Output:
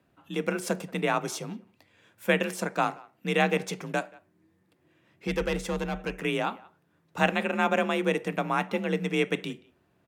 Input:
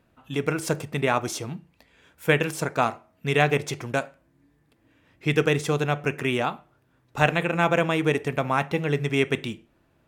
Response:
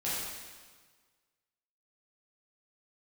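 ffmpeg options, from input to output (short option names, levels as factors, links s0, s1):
-filter_complex "[0:a]asplit=2[s0][s1];[s1]adelay=180,highpass=300,lowpass=3400,asoftclip=type=hard:threshold=0.282,volume=0.0708[s2];[s0][s2]amix=inputs=2:normalize=0,asettb=1/sr,asplit=3[s3][s4][s5];[s3]atrim=end=5.274[s6];[s4]atrim=start=5.27:end=6.23,asetpts=PTS-STARTPTS,afade=t=in:d=0.004:c=qsin,afade=t=out:st=0.956:d=0.004:c=qsin,aeval=exprs='(tanh(6.31*val(0)+0.45)-tanh(0.45))/6.31':c=same[s7];[s5]atrim=start=6.226[s8];[s6][s7]acrossfade=d=0.004:c1=hsin:c2=qsin[s9];[s9][s8]acrossfade=d=0.004:c1=qsin:c2=hsin,afreqshift=38,volume=0.668"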